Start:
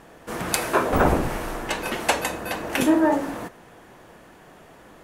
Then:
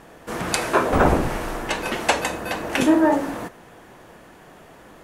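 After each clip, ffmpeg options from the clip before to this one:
-filter_complex "[0:a]acrossover=split=10000[s0][s1];[s1]acompressor=threshold=0.00282:ratio=4:attack=1:release=60[s2];[s0][s2]amix=inputs=2:normalize=0,volume=1.26"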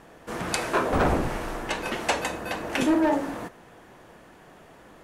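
-filter_complex "[0:a]highshelf=f=11000:g=-5,acrossover=split=4800[s0][s1];[s0]volume=4.22,asoftclip=hard,volume=0.237[s2];[s2][s1]amix=inputs=2:normalize=0,volume=0.631"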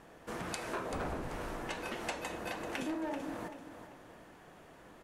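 -filter_complex "[0:a]acompressor=threshold=0.0282:ratio=4,asplit=2[s0][s1];[s1]aecho=0:1:386|772|1158:0.316|0.098|0.0304[s2];[s0][s2]amix=inputs=2:normalize=0,volume=0.501"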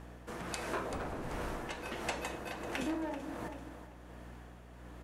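-af "aeval=exprs='val(0)+0.00282*(sin(2*PI*60*n/s)+sin(2*PI*2*60*n/s)/2+sin(2*PI*3*60*n/s)/3+sin(2*PI*4*60*n/s)/4+sin(2*PI*5*60*n/s)/5)':c=same,tremolo=f=1.4:d=0.38,volume=1.19"

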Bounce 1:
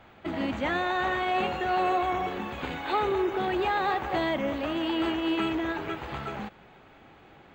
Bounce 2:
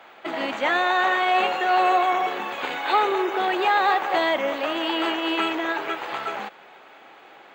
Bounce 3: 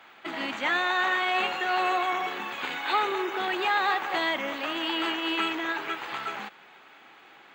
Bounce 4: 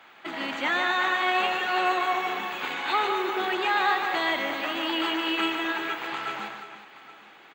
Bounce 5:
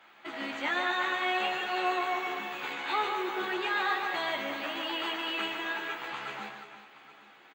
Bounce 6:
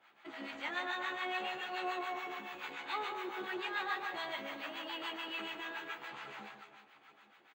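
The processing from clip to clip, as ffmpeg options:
-af "highpass=500,volume=2.51"
-af "equalizer=f=570:t=o:w=1.3:g=-9,volume=0.841"
-af "aecho=1:1:150|359|820:0.501|0.282|0.133"
-filter_complex "[0:a]asplit=2[s0][s1];[s1]adelay=14,volume=0.631[s2];[s0][s2]amix=inputs=2:normalize=0,volume=0.473"
-filter_complex "[0:a]acrossover=split=730[s0][s1];[s0]aeval=exprs='val(0)*(1-0.7/2+0.7/2*cos(2*PI*7*n/s))':c=same[s2];[s1]aeval=exprs='val(0)*(1-0.7/2-0.7/2*cos(2*PI*7*n/s))':c=same[s3];[s2][s3]amix=inputs=2:normalize=0,volume=0.562"

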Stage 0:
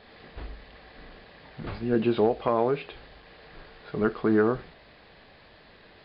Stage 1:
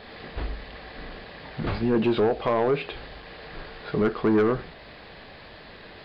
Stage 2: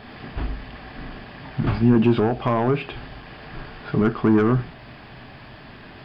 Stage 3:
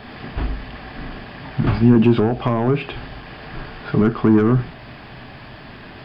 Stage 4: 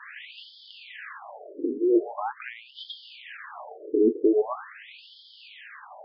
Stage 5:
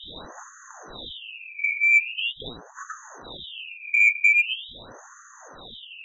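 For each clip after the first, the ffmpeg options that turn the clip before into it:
-filter_complex "[0:a]asplit=2[s0][s1];[s1]alimiter=limit=0.0841:level=0:latency=1:release=399,volume=1.33[s2];[s0][s2]amix=inputs=2:normalize=0,asoftclip=type=tanh:threshold=0.158,volume=1.12"
-af "equalizer=f=125:t=o:w=0.33:g=11,equalizer=f=250:t=o:w=0.33:g=6,equalizer=f=500:t=o:w=0.33:g=-11,equalizer=f=2000:t=o:w=0.33:g=-4,equalizer=f=4000:t=o:w=0.33:g=-10,volume=1.5"
-filter_complex "[0:a]acrossover=split=390[s0][s1];[s1]acompressor=threshold=0.0501:ratio=4[s2];[s0][s2]amix=inputs=2:normalize=0,volume=1.58"
-af "afftfilt=real='re*between(b*sr/1024,360*pow(4400/360,0.5+0.5*sin(2*PI*0.43*pts/sr))/1.41,360*pow(4400/360,0.5+0.5*sin(2*PI*0.43*pts/sr))*1.41)':imag='im*between(b*sr/1024,360*pow(4400/360,0.5+0.5*sin(2*PI*0.43*pts/sr))/1.41,360*pow(4400/360,0.5+0.5*sin(2*PI*0.43*pts/sr))*1.41)':win_size=1024:overlap=0.75,volume=1.12"
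-af "afftfilt=real='real(if(lt(b,920),b+92*(1-2*mod(floor(b/92),2)),b),0)':imag='imag(if(lt(b,920),b+92*(1-2*mod(floor(b/92),2)),b),0)':win_size=2048:overlap=0.75,acontrast=81,volume=0.631"

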